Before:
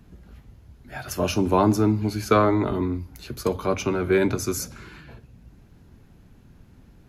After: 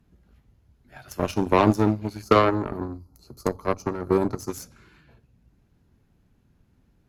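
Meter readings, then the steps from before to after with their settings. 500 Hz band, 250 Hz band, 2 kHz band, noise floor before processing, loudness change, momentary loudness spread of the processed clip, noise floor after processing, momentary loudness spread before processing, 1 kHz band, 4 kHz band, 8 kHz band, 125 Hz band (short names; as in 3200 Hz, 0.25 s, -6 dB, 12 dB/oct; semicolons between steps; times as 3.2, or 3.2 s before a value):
-1.0 dB, -2.0 dB, -2.0 dB, -53 dBFS, -1.0 dB, 16 LU, -65 dBFS, 14 LU, +1.0 dB, -2.5 dB, -8.5 dB, -2.5 dB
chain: spectral gain 2.22–4.5, 1400–4000 Hz -17 dB; added harmonics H 7 -19 dB, 8 -32 dB, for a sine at -4 dBFS; gain +2 dB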